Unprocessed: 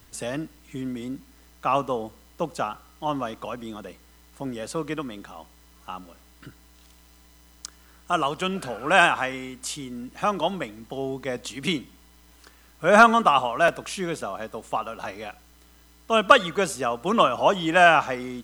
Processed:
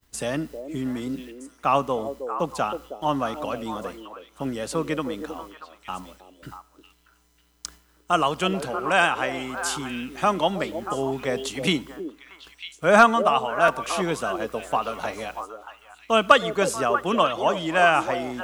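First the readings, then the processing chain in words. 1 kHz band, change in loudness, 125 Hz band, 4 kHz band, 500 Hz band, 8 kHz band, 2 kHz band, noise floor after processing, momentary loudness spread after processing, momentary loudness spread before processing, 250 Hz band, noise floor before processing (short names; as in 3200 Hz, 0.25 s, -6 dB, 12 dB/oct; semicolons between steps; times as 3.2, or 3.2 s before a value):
0.0 dB, -0.5 dB, +1.5 dB, +0.5 dB, +1.0 dB, +2.0 dB, -1.0 dB, -61 dBFS, 19 LU, 20 LU, +1.5 dB, -54 dBFS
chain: expander -44 dBFS; vocal rider within 3 dB 0.5 s; delay with a stepping band-pass 0.317 s, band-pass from 430 Hz, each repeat 1.4 oct, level -5 dB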